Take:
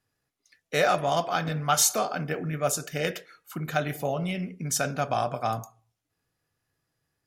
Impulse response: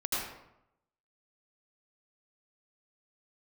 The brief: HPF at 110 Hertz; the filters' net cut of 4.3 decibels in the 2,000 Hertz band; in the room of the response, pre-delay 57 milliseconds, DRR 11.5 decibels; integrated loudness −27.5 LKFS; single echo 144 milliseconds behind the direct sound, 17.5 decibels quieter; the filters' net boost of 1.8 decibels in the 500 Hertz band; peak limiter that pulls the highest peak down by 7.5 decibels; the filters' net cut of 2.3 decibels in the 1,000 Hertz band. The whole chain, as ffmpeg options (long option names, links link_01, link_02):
-filter_complex "[0:a]highpass=110,equalizer=frequency=500:width_type=o:gain=4.5,equalizer=frequency=1000:width_type=o:gain=-5.5,equalizer=frequency=2000:width_type=o:gain=-4,alimiter=limit=-17.5dB:level=0:latency=1,aecho=1:1:144:0.133,asplit=2[link_01][link_02];[1:a]atrim=start_sample=2205,adelay=57[link_03];[link_02][link_03]afir=irnorm=-1:irlink=0,volume=-18.5dB[link_04];[link_01][link_04]amix=inputs=2:normalize=0,volume=2dB"